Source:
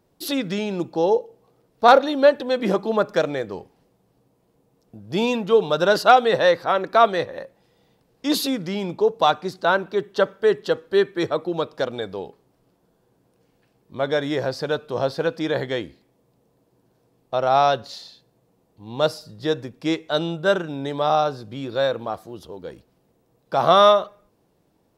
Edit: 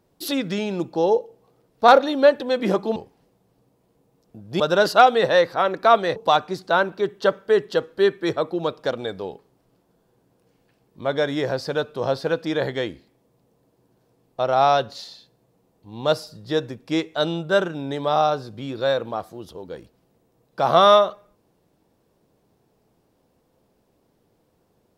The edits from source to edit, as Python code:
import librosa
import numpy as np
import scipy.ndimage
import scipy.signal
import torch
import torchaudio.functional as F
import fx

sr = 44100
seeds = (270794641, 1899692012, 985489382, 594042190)

y = fx.edit(x, sr, fx.cut(start_s=2.96, length_s=0.59),
    fx.cut(start_s=5.19, length_s=0.51),
    fx.cut(start_s=7.26, length_s=1.84), tone=tone)